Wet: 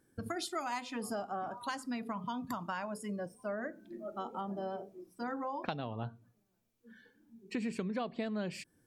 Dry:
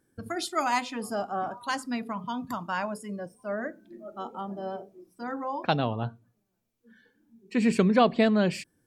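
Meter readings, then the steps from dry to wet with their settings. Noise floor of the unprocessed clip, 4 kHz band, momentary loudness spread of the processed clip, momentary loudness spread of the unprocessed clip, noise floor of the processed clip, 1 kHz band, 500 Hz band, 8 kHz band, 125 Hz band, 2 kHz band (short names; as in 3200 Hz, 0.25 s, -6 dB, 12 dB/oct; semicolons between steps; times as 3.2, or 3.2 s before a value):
-76 dBFS, -10.0 dB, 6 LU, 16 LU, -76 dBFS, -9.5 dB, -10.5 dB, -7.0 dB, -11.0 dB, -10.0 dB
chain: compressor 6:1, threshold -35 dBFS, peak gain reduction 18 dB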